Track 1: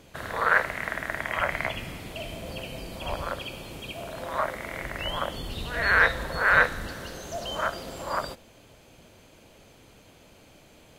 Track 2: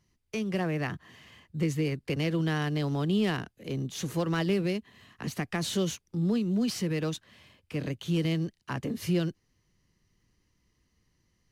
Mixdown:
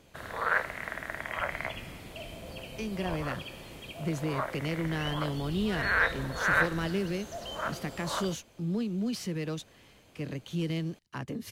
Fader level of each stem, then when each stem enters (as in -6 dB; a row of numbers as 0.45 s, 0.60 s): -6.0 dB, -4.0 dB; 0.00 s, 2.45 s